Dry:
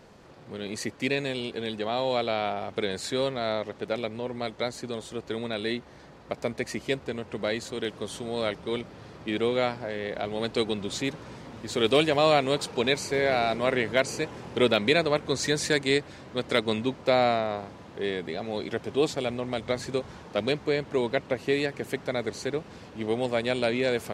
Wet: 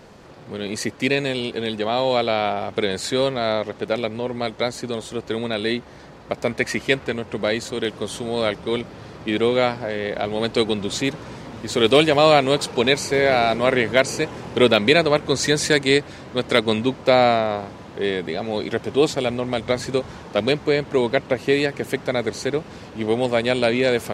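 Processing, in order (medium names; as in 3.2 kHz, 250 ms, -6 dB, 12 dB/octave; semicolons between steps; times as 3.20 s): 6.46–7.14 s: dynamic bell 1.9 kHz, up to +6 dB, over -44 dBFS, Q 0.82; trim +7 dB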